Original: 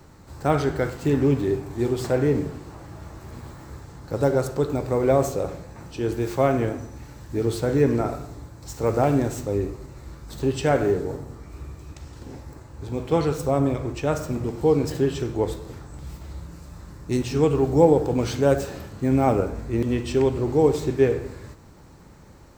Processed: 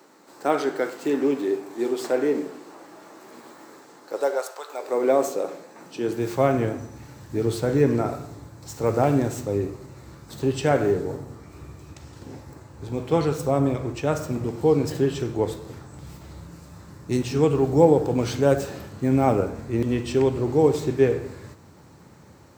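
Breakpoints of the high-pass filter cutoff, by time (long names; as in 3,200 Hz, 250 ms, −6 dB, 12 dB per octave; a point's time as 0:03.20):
high-pass filter 24 dB per octave
0:03.94 260 Hz
0:04.65 780 Hz
0:05.02 250 Hz
0:05.77 250 Hz
0:06.40 82 Hz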